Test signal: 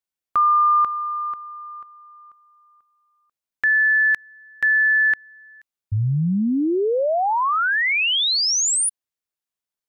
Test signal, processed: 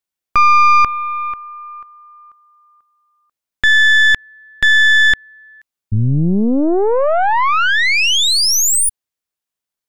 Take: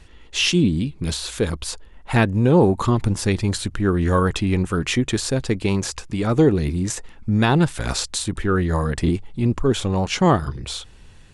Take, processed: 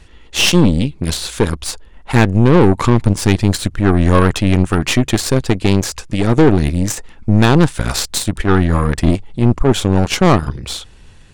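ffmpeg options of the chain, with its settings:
-af "aeval=exprs='0.596*(cos(1*acos(clip(val(0)/0.596,-1,1)))-cos(1*PI/2))+0.15*(cos(4*acos(clip(val(0)/0.596,-1,1)))-cos(4*PI/2))+0.0376*(cos(7*acos(clip(val(0)/0.596,-1,1)))-cos(7*PI/2))':c=same,asoftclip=type=tanh:threshold=-10dB,volume=9dB"

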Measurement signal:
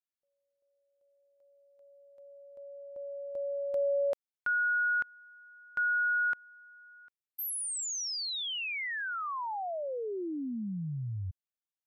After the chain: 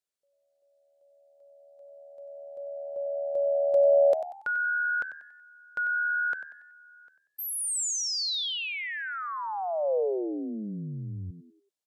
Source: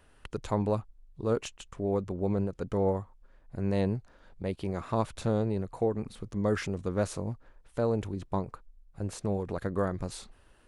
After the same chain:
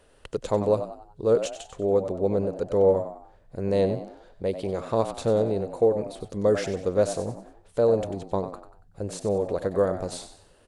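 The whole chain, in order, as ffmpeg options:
-filter_complex "[0:a]equalizer=f=500:t=o:w=1:g=11,equalizer=f=4k:t=o:w=1:g=5,equalizer=f=8k:t=o:w=1:g=6,asplit=5[a][b][c][d][e];[b]adelay=94,afreqshift=76,volume=-11dB[f];[c]adelay=188,afreqshift=152,volume=-19.4dB[g];[d]adelay=282,afreqshift=228,volume=-27.8dB[h];[e]adelay=376,afreqshift=304,volume=-36.2dB[i];[a][f][g][h][i]amix=inputs=5:normalize=0,volume=-1dB"

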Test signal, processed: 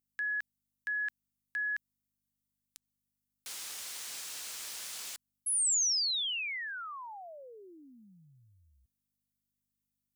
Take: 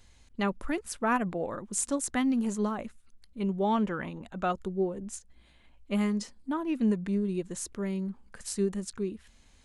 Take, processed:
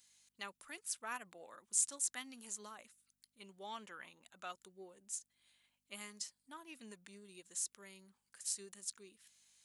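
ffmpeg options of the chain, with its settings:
-filter_complex "[0:a]aeval=exprs='val(0)+0.002*(sin(2*PI*50*n/s)+sin(2*PI*2*50*n/s)/2+sin(2*PI*3*50*n/s)/3+sin(2*PI*4*50*n/s)/4+sin(2*PI*5*50*n/s)/5)':c=same,aderivative,acrossover=split=9500[a][b];[b]acompressor=threshold=-49dB:ratio=4:attack=1:release=60[c];[a][c]amix=inputs=2:normalize=0"

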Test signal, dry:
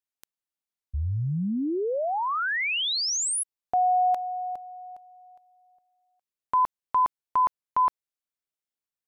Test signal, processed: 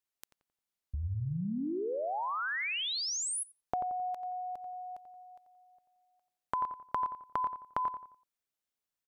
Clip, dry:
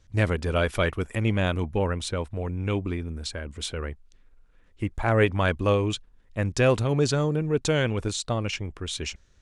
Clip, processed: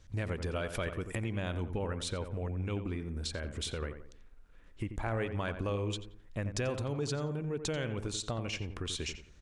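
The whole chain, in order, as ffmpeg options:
-filter_complex "[0:a]acompressor=threshold=-38dB:ratio=3:attack=13:release=189:knee=1:detection=peak,asplit=2[a][b];[b]adelay=88,lowpass=f=1.9k:p=1,volume=-8.5dB,asplit=2[c][d];[d]adelay=88,lowpass=f=1.9k:p=1,volume=0.39,asplit=2[e][f];[f]adelay=88,lowpass=f=1.9k:p=1,volume=0.39,asplit=2[g][h];[h]adelay=88,lowpass=f=1.9k:p=1,volume=0.39[i];[c][e][g][i]amix=inputs=4:normalize=0[j];[a][j]amix=inputs=2:normalize=0,volume=1dB"

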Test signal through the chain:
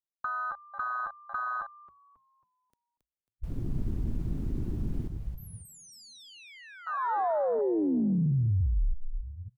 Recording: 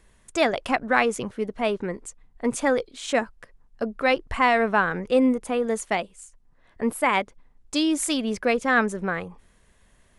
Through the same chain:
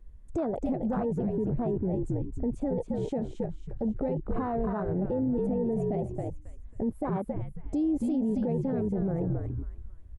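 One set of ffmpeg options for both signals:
-filter_complex "[0:a]acompressor=threshold=-29dB:ratio=16,tiltshelf=f=760:g=10,asplit=2[a][b];[b]asplit=5[c][d][e][f][g];[c]adelay=272,afreqshift=-60,volume=-5dB[h];[d]adelay=544,afreqshift=-120,volume=-13.6dB[i];[e]adelay=816,afreqshift=-180,volume=-22.3dB[j];[f]adelay=1088,afreqshift=-240,volume=-30.9dB[k];[g]adelay=1360,afreqshift=-300,volume=-39.5dB[l];[h][i][j][k][l]amix=inputs=5:normalize=0[m];[a][m]amix=inputs=2:normalize=0,afwtdn=0.0316,alimiter=level_in=2dB:limit=-24dB:level=0:latency=1:release=15,volume=-2dB,volume=4dB"

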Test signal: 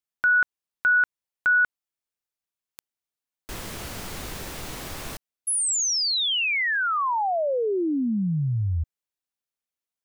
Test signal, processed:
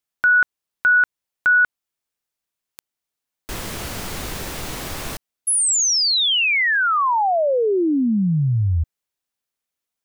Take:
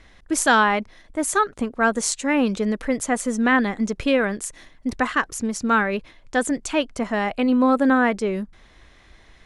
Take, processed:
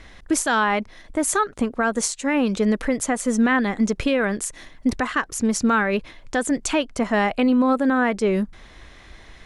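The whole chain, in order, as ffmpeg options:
-af "alimiter=limit=-17dB:level=0:latency=1:release=364,volume=6dB"

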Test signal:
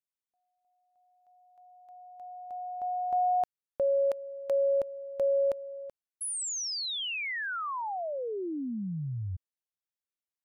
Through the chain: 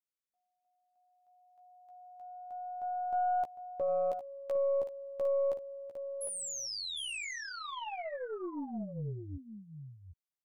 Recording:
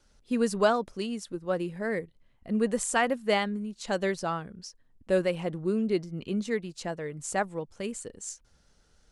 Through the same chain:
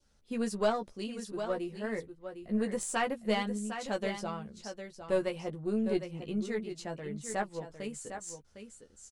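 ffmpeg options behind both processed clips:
-filter_complex "[0:a]adynamicequalizer=threshold=0.00398:dfrequency=1500:dqfactor=1.7:tfrequency=1500:tqfactor=1.7:attack=5:release=100:ratio=0.375:range=3.5:mode=cutabove:tftype=bell,asplit=2[a][b];[b]adelay=14,volume=-5dB[c];[a][c]amix=inputs=2:normalize=0,aecho=1:1:756:0.355,aeval=exprs='0.299*(cos(1*acos(clip(val(0)/0.299,-1,1)))-cos(1*PI/2))+0.0188*(cos(4*acos(clip(val(0)/0.299,-1,1)))-cos(4*PI/2))':c=same,volume=-6.5dB"

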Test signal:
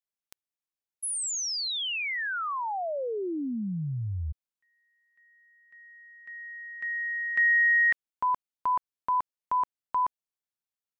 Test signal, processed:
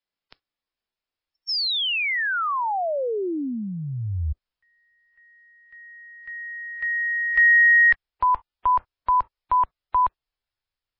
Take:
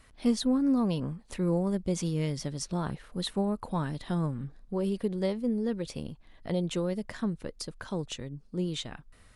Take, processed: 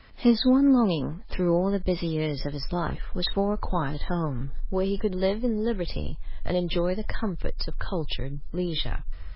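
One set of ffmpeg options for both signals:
-filter_complex "[0:a]acrossover=split=170|2800[a][b][c];[a]acompressor=threshold=-41dB:ratio=6:attack=5.7:release=180:knee=2.83:detection=peak[d];[d][b][c]amix=inputs=3:normalize=0,asubboost=boost=10.5:cutoff=60,volume=7.5dB" -ar 12000 -c:a libmp3lame -b:a 16k

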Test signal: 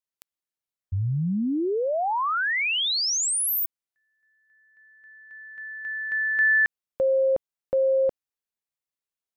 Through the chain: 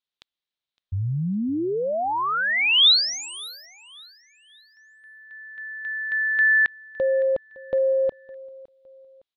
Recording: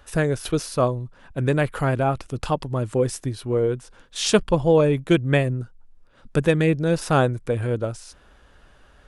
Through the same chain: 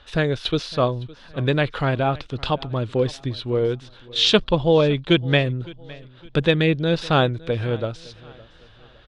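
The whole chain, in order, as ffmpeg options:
-af "lowpass=f=3.7k:t=q:w=3.8,aecho=1:1:561|1122|1683:0.0841|0.0311|0.0115"

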